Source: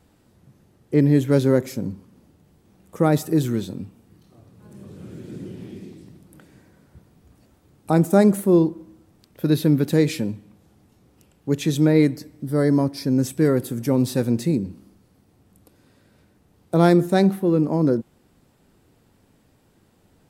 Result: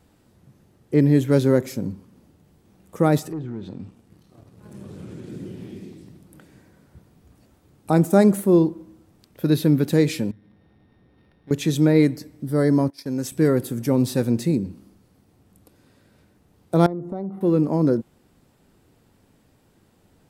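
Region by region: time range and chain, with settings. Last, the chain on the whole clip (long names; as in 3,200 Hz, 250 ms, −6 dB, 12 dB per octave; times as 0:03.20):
0:03.19–0:05.29: treble cut that deepens with the level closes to 1,600 Hz, closed at −18.5 dBFS + leveller curve on the samples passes 1 + downward compressor 2.5 to 1, threshold −34 dBFS
0:10.31–0:11.51: samples sorted by size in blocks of 8 samples + downward compressor 2 to 1, threshold −53 dBFS + linearly interpolated sample-rate reduction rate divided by 6×
0:12.90–0:13.32: noise gate −33 dBFS, range −15 dB + low-shelf EQ 390 Hz −9.5 dB
0:16.86–0:17.41: Savitzky-Golay smoothing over 65 samples + downward compressor 5 to 1, threshold −27 dBFS
whole clip: no processing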